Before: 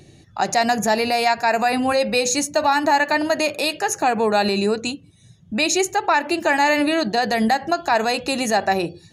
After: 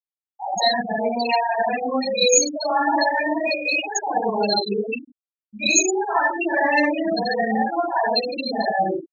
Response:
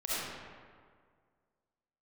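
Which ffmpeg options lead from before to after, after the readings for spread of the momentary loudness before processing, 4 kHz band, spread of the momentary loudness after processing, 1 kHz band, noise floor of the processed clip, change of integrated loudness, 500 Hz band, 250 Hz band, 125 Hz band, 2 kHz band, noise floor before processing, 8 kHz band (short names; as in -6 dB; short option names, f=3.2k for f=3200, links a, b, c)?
5 LU, 0.0 dB, 7 LU, -2.5 dB, under -85 dBFS, -1.0 dB, -1.5 dB, -3.0 dB, n/a, -1.5 dB, -50 dBFS, +3.5 dB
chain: -filter_complex "[1:a]atrim=start_sample=2205,afade=t=out:st=0.39:d=0.01,atrim=end_sample=17640,asetrate=70560,aresample=44100[a];[0:a][a]afir=irnorm=-1:irlink=0,afftfilt=real='re*gte(hypot(re,im),0.316)':imag='im*gte(hypot(re,im),0.316)':win_size=1024:overlap=0.75,aexciter=amount=5.9:drive=2.5:freq=2.1k,asuperstop=centerf=2200:order=4:qfactor=3.5,volume=-4dB"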